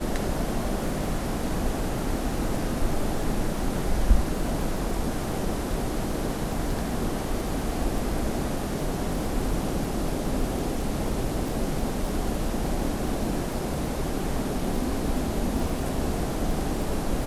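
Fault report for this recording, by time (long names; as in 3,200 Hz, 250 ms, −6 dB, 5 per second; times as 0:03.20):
surface crackle 27 per second −32 dBFS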